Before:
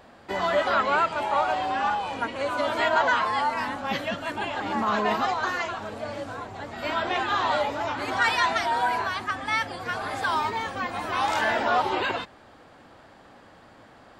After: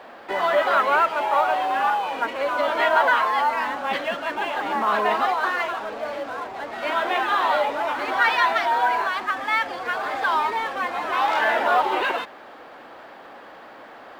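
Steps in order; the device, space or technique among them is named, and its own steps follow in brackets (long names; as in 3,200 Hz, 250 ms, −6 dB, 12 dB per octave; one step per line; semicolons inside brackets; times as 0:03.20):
phone line with mismatched companding (band-pass filter 370–3,200 Hz; mu-law and A-law mismatch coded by mu)
level +3.5 dB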